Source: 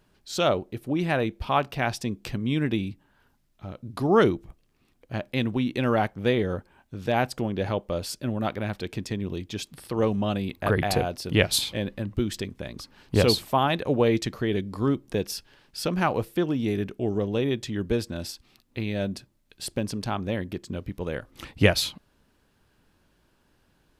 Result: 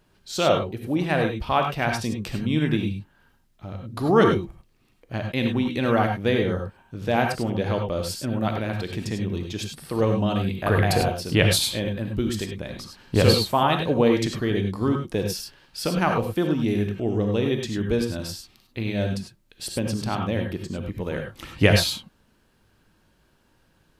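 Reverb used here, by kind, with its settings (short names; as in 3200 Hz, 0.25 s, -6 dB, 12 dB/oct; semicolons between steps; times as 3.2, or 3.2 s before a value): non-linear reverb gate 0.12 s rising, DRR 3 dB; gain +1 dB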